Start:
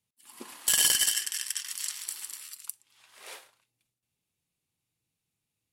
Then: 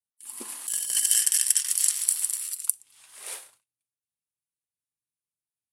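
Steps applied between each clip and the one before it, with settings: gate with hold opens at -50 dBFS; peaking EQ 9.6 kHz +14.5 dB 0.91 oct; compressor with a negative ratio -19 dBFS, ratio -0.5; trim -2.5 dB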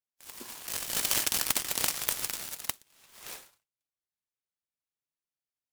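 delay time shaken by noise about 2.7 kHz, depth 0.032 ms; trim -5 dB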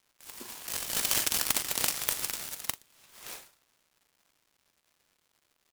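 crackle 400 per s -55 dBFS; doubling 41 ms -13 dB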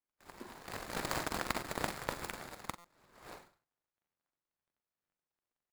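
median filter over 15 samples; flutter echo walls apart 8 m, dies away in 0.21 s; buffer glitch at 2.78 s, samples 256, times 10; trim -1 dB

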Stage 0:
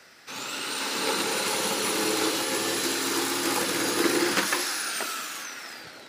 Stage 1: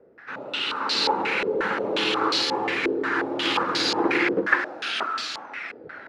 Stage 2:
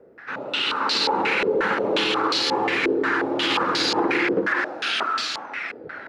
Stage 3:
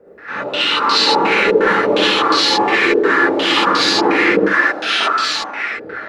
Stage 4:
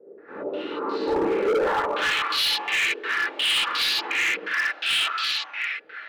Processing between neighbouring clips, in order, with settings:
step-sequenced low-pass 5.6 Hz 450–4400 Hz
peak limiter -16.5 dBFS, peak gain reduction 11.5 dB; trim +4 dB
gated-style reverb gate 90 ms rising, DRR -6 dB; trim +1.5 dB
band-pass sweep 380 Hz -> 2.9 kHz, 1.43–2.33 s; overload inside the chain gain 19 dB

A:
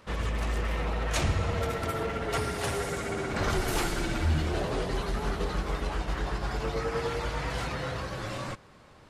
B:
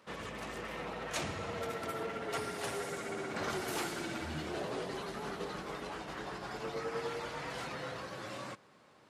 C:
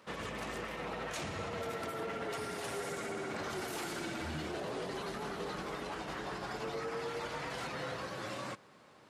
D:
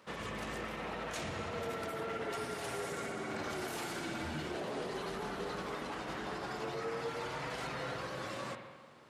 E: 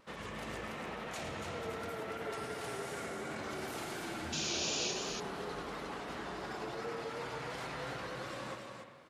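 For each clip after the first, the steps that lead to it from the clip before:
high-pass 180 Hz 12 dB/octave; trim -6.5 dB
peak limiter -33 dBFS, peak gain reduction 8.5 dB; trim +2.5 dB
spring tank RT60 1.4 s, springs 46/54 ms, chirp 25 ms, DRR 5.5 dB; trim -1 dB
painted sound noise, 4.32–4.92 s, 2.3–7.1 kHz -35 dBFS; vibrato 2.8 Hz 48 cents; loudspeakers at several distances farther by 37 m -10 dB, 98 m -5 dB; trim -3 dB

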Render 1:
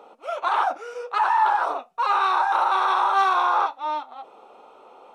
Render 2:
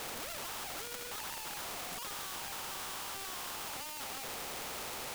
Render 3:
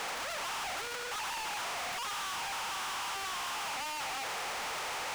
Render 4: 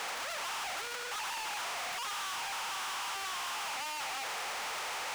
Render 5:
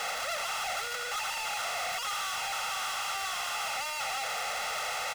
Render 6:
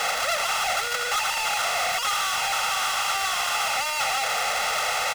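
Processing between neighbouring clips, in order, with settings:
one-bit comparator; spectrum-flattening compressor 2:1; trim -5.5 dB
Bessel high-pass 1.3 kHz, order 4; overdrive pedal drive 25 dB, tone 3.7 kHz, clips at -28 dBFS
bass shelf 370 Hz -7.5 dB
comb 1.5 ms, depth 77%; trim +2 dB
transient shaper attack +5 dB, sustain -5 dB; trim +8.5 dB

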